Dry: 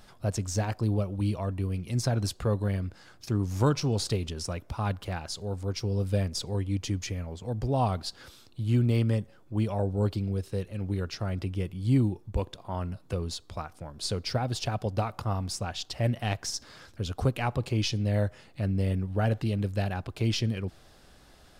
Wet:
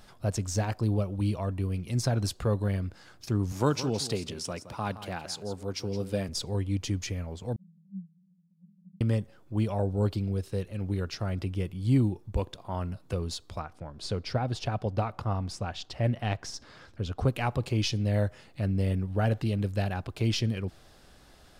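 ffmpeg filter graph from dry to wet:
ffmpeg -i in.wav -filter_complex "[0:a]asettb=1/sr,asplit=3[link_01][link_02][link_03];[link_01]atrim=end=3.524[link_04];[link_02]atrim=start=3.52:end=6.29,asetpts=PTS-STARTPTS,afade=type=in:duration=0.004:curve=qsin,afade=type=out:start_time=2.766:duration=0.004:curve=qsin,highpass=150,aecho=1:1:168:0.224,atrim=end_sample=122157[link_05];[link_03]atrim=start=6.286[link_06];[link_04][link_05]acrossfade=duration=0.004:curve1=hsin:curve2=qsin[link_07];[link_07][link_06]acrossfade=duration=0.004:curve1=qsin:curve2=hsin,asettb=1/sr,asplit=3[link_08][link_09][link_10];[link_08]atrim=end=7.564[link_11];[link_09]atrim=start=7.56:end=9.01,asetpts=PTS-STARTPTS,afade=type=in:duration=0.004:curve=qsin,afade=type=out:start_time=1.446:duration=0.004:curve=qsin,asuperpass=centerf=180:order=20:qfactor=4.4,acompressor=mode=upward:threshold=-54dB:ratio=2.5:attack=3.2:release=140:knee=2.83:detection=peak[link_12];[link_10]atrim=start=9.006[link_13];[link_11][link_12]acrossfade=duration=0.004:curve1=hsin:curve2=qsin[link_14];[link_14][link_13]acrossfade=duration=0.004:curve1=qsin:curve2=hsin,asettb=1/sr,asplit=3[link_15][link_16][link_17];[link_15]atrim=end=13.594[link_18];[link_16]atrim=start=13.59:end=17.28,asetpts=PTS-STARTPTS,afade=type=in:duration=0.004:curve=qsin,afade=type=out:start_time=3.686:duration=0.004:curve=qsin,aemphasis=mode=reproduction:type=50kf,deesser=0.75[link_19];[link_17]atrim=start=17.276[link_20];[link_18][link_19]acrossfade=duration=0.004:curve1=hsin:curve2=qsin[link_21];[link_21][link_20]acrossfade=duration=0.004:curve1=qsin:curve2=hsin" out.wav

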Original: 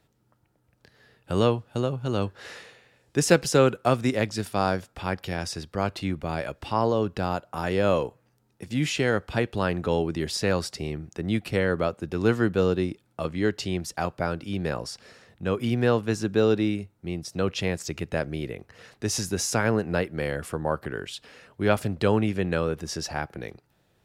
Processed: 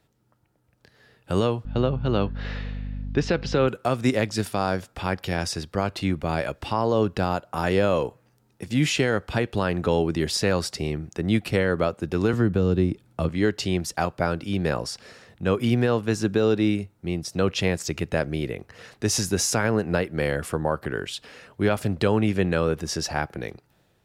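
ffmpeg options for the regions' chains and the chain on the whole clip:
ffmpeg -i in.wav -filter_complex "[0:a]asettb=1/sr,asplit=3[link_01][link_02][link_03];[link_01]atrim=end=1.654[link_04];[link_02]atrim=start=1.65:end=3.68,asetpts=PTS-STARTPTS,afade=type=in:duration=0.004:curve=qsin,afade=type=out:start_time=2.026:duration=0.004:curve=qsin,lowpass=frequency=4300:width=0.5412,lowpass=frequency=4300:width=1.3066,aeval=exprs='val(0)+0.02*(sin(2*PI*50*n/s)+sin(2*PI*2*50*n/s)/2+sin(2*PI*3*50*n/s)/3+sin(2*PI*4*50*n/s)/4+sin(2*PI*5*50*n/s)/5)':channel_layout=same[link_05];[link_03]atrim=start=3.676[link_06];[link_04][link_05]acrossfade=duration=0.004:curve1=hsin:curve2=qsin[link_07];[link_07][link_06]acrossfade=duration=0.004:curve1=qsin:curve2=hsin,asettb=1/sr,asplit=3[link_08][link_09][link_10];[link_08]atrim=end=12.334[link_11];[link_09]atrim=start=12.33:end=13.29,asetpts=PTS-STARTPTS,afade=type=in:duration=0.004:curve=qsin,afade=type=out:start_time=0.956:duration=0.004:curve=qsin,lowshelf=frequency=200:gain=9,acrossover=split=400|1700[link_12][link_13][link_14];[link_12]acompressor=threshold=-21dB:ratio=4[link_15];[link_13]acompressor=threshold=-33dB:ratio=4[link_16];[link_14]acompressor=threshold=-47dB:ratio=4[link_17];[link_15][link_16][link_17]amix=inputs=3:normalize=0[link_18];[link_10]atrim=start=13.286[link_19];[link_11][link_18]acrossfade=duration=0.004:curve1=hsin:curve2=qsin[link_20];[link_20][link_19]acrossfade=duration=0.004:curve1=qsin:curve2=hsin,alimiter=limit=-14.5dB:level=0:latency=1:release=183,dynaudnorm=framelen=850:gausssize=3:maxgain=4dB" out.wav

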